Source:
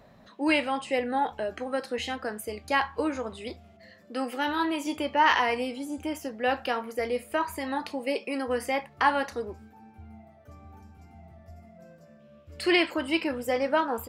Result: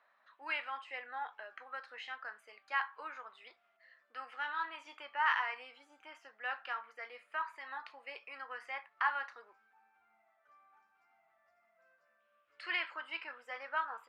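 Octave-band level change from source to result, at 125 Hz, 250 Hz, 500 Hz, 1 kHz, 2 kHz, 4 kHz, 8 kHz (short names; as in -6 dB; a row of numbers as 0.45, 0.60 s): under -40 dB, -35.0 dB, -24.0 dB, -11.0 dB, -7.5 dB, -13.5 dB, under -25 dB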